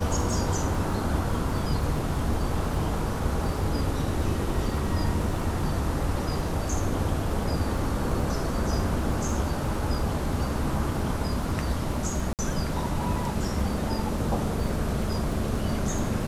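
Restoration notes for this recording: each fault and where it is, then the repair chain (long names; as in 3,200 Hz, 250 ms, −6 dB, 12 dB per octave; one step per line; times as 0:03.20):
surface crackle 33 per second −34 dBFS
0:12.33–0:12.39: drop-out 58 ms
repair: click removal
repair the gap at 0:12.33, 58 ms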